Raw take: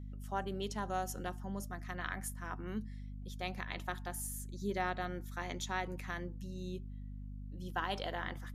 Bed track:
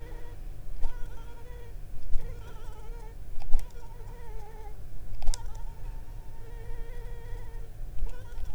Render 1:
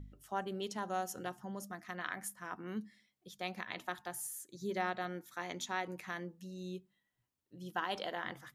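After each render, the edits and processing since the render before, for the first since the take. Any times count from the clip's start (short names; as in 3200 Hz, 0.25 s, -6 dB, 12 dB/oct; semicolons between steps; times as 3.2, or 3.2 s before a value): de-hum 50 Hz, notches 5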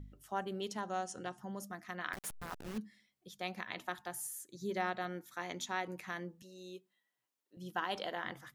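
0.81–1.38 elliptic low-pass 9600 Hz; 2.13–2.78 level-crossing sampler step -40 dBFS; 6.42–7.57 HPF 370 Hz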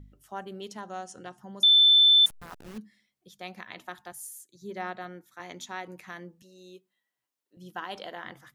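1.63–2.26 bleep 3530 Hz -14.5 dBFS; 4.12–5.4 three-band expander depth 40%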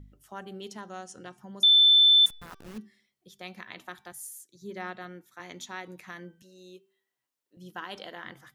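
dynamic EQ 730 Hz, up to -5 dB, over -49 dBFS, Q 1.6; de-hum 387.7 Hz, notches 15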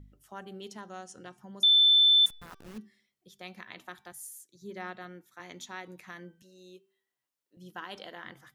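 gain -2.5 dB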